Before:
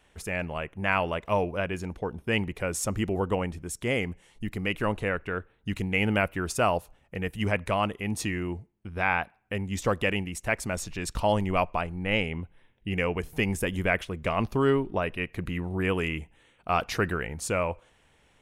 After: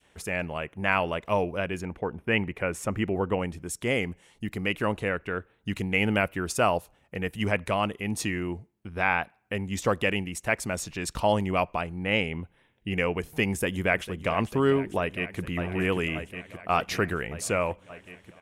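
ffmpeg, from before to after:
ffmpeg -i in.wav -filter_complex "[0:a]asettb=1/sr,asplit=3[link_01][link_02][link_03];[link_01]atrim=end=1.814[link_04];[link_02]atrim=start=1.81:end=3.4,asetpts=PTS-STARTPTS,afade=type=in:duration=0.004:curve=qsin,afade=type=out:start_time=1.586:duration=0.004:curve=qsin,highshelf=frequency=3200:width_type=q:width=1.5:gain=-8.5[link_05];[link_03]atrim=start=3.396[link_06];[link_04][link_05]acrossfade=duration=0.004:curve1=hsin:curve2=qsin[link_07];[link_07][link_06]acrossfade=duration=0.004:curve1=qsin:curve2=hsin,asplit=2[link_08][link_09];[link_09]afade=type=in:start_time=13.47:duration=0.01,afade=type=out:start_time=14.35:duration=0.01,aecho=0:1:450|900|1350|1800|2250|2700|3150|3600|4050|4500|4950|5400:0.188365|0.150692|0.120554|0.0964428|0.0771543|0.0617234|0.0493787|0.039503|0.0316024|0.0252819|0.0202255|0.0161804[link_10];[link_08][link_10]amix=inputs=2:normalize=0,asplit=2[link_11][link_12];[link_12]afade=type=in:start_time=14.99:duration=0.01,afade=type=out:start_time=15.4:duration=0.01,aecho=0:1:580|1160|1740|2320|2900|3480|4060|4640|5220|5800|6380|6960:0.473151|0.354863|0.266148|0.199611|0.149708|0.112281|0.0842108|0.0631581|0.0473686|0.0355264|0.0266448|0.0199836[link_13];[link_11][link_13]amix=inputs=2:normalize=0,highpass=frequency=100:poles=1,adynamicequalizer=threshold=0.0158:dfrequency=1000:dqfactor=0.73:tfrequency=1000:tqfactor=0.73:attack=5:release=100:ratio=0.375:range=2:mode=cutabove:tftype=bell,volume=1.5dB" out.wav

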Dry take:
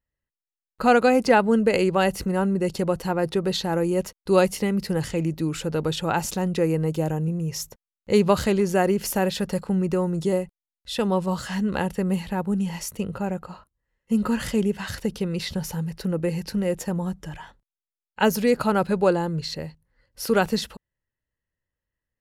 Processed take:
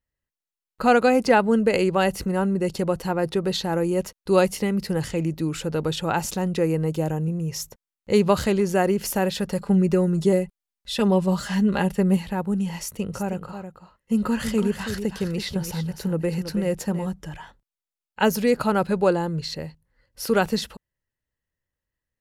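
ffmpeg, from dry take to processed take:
ffmpeg -i in.wav -filter_complex "[0:a]asettb=1/sr,asplit=3[link_01][link_02][link_03];[link_01]atrim=end=9.604[link_04];[link_02]atrim=start=9.6:end=12.17,asetpts=PTS-STARTPTS,afade=type=in:duration=0.004:curve=qsin,afade=type=out:start_time=2.566:duration=0.004:curve=qsin,aecho=1:1:5:0.71,atrim=end_sample=113337[link_05];[link_03]atrim=start=12.166[link_06];[link_04][link_05]acrossfade=duration=0.004:curve1=hsin:curve2=qsin[link_07];[link_07][link_06]acrossfade=duration=0.004:curve1=qsin:curve2=hsin,asettb=1/sr,asplit=3[link_08][link_09][link_10];[link_08]atrim=end=12.814[link_11];[link_09]atrim=start=12.81:end=17.07,asetpts=PTS-STARTPTS,afade=type=in:duration=0.004:curve=qsin,afade=type=out:start_time=4.256:duration=0.004:curve=qsin,aecho=1:1:326:0.355,atrim=end_sample=187866[link_12];[link_10]atrim=start=17.066[link_13];[link_11][link_12]acrossfade=duration=0.004:curve1=hsin:curve2=qsin[link_14];[link_14][link_13]acrossfade=duration=0.004:curve1=qsin:curve2=hsin" out.wav

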